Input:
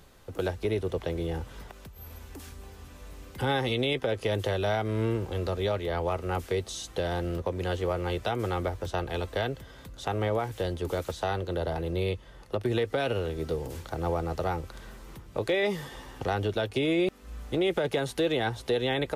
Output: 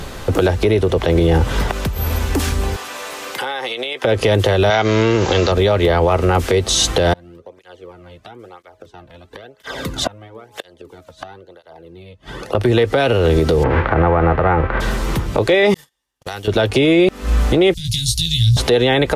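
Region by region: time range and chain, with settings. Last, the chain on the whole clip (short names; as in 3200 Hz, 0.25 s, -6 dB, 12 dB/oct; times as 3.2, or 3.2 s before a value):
2.76–4.05 HPF 620 Hz + compressor 10:1, threshold -46 dBFS
4.7–5.52 tilt +2.5 dB/oct + careless resampling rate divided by 3×, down none, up filtered
7.13–12.55 de-hum 211.2 Hz, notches 8 + flipped gate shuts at -27 dBFS, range -32 dB + tape flanging out of phase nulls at 1 Hz, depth 2.7 ms
13.62–14.8 spectral whitening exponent 0.6 + LPF 1900 Hz 24 dB/oct + mismatched tape noise reduction encoder only
15.74–16.48 pre-emphasis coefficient 0.9 + gate -48 dBFS, range -46 dB + compressor 10:1, threshold -48 dBFS
17.74–18.57 elliptic band-stop 110–4400 Hz, stop band 60 dB + doubler 18 ms -5 dB
whole clip: high shelf 11000 Hz -9.5 dB; compressor 5:1, threshold -34 dBFS; maximiser +30.5 dB; gain -4.5 dB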